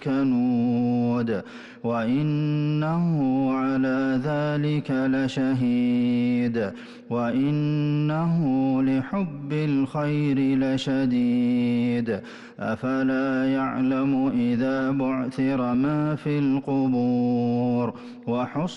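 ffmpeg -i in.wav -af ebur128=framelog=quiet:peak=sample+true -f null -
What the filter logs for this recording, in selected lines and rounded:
Integrated loudness:
  I:         -23.9 LUFS
  Threshold: -34.0 LUFS
Loudness range:
  LRA:         0.8 LU
  Threshold: -43.9 LUFS
  LRA low:   -24.3 LUFS
  LRA high:  -23.5 LUFS
Sample peak:
  Peak:      -15.8 dBFS
True peak:
  Peak:      -15.8 dBFS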